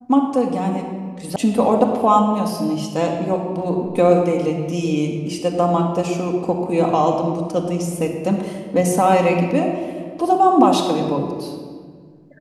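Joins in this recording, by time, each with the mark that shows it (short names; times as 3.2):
1.36 sound cut off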